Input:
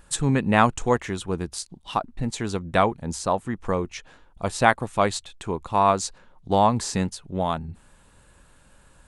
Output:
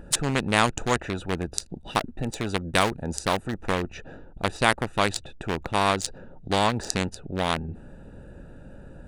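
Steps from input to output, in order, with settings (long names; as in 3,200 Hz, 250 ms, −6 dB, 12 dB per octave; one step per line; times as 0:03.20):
adaptive Wiener filter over 41 samples
0:01.65–0:03.66: high-shelf EQ 7,400 Hz +10.5 dB
every bin compressed towards the loudest bin 2 to 1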